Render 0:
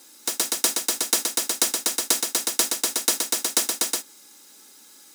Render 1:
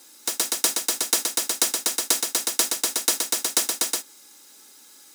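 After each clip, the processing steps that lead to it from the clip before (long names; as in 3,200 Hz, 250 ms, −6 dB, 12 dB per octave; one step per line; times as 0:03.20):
high-pass filter 220 Hz 6 dB per octave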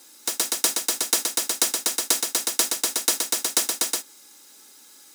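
no processing that can be heard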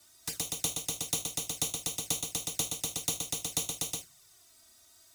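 frequency shifter −180 Hz
reverb whose tail is shaped and stops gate 110 ms falling, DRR 10 dB
flanger swept by the level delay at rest 3.7 ms, full sweep at −22 dBFS
level −7.5 dB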